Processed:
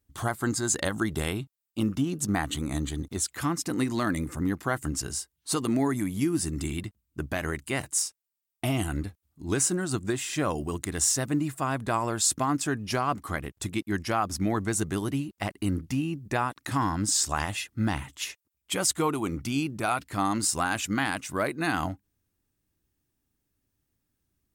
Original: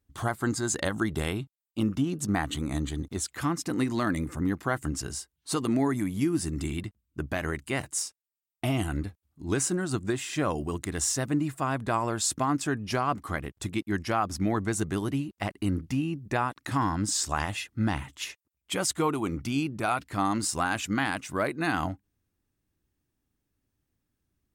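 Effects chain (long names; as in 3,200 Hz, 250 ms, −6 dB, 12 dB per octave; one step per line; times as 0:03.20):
high-shelf EQ 5,800 Hz +6 dB
floating-point word with a short mantissa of 6 bits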